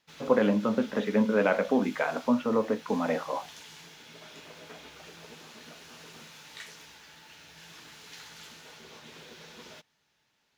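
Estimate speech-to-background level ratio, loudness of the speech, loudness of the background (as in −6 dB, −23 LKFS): 20.0 dB, −27.5 LKFS, −47.5 LKFS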